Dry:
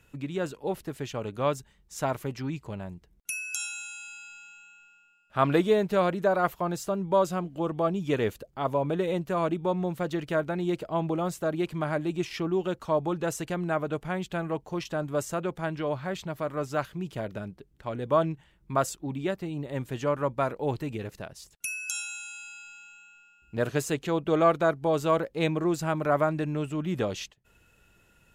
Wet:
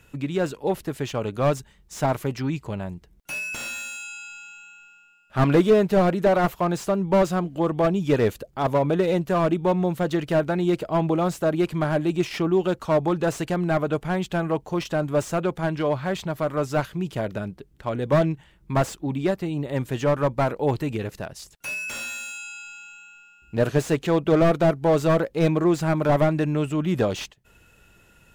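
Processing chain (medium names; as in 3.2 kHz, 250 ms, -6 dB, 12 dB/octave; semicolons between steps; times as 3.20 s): slew-rate limiter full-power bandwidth 53 Hz; trim +6.5 dB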